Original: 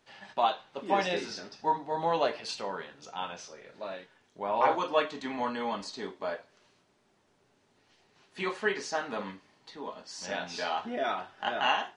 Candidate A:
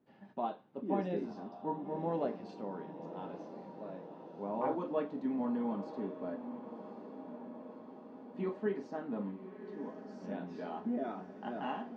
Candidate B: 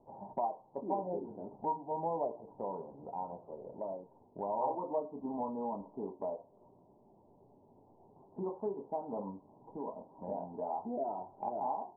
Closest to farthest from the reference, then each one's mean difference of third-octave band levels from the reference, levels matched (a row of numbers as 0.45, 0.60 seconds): A, B; 8.5, 12.0 decibels